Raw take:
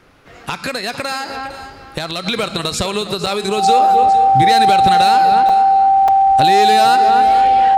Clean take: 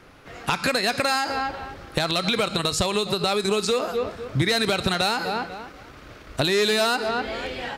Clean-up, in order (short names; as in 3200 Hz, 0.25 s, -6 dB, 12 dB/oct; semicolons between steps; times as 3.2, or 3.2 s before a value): notch 780 Hz, Q 30; interpolate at 3.26/5.49/6.08, 4.3 ms; inverse comb 0.457 s -13.5 dB; gain 0 dB, from 2.26 s -3.5 dB